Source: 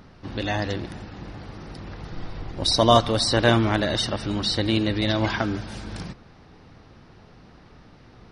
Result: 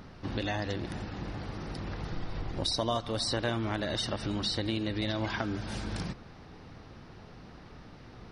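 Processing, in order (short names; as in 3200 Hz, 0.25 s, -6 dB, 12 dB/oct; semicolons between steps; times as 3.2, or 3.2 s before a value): compressor 4:1, threshold -30 dBFS, peak gain reduction 16 dB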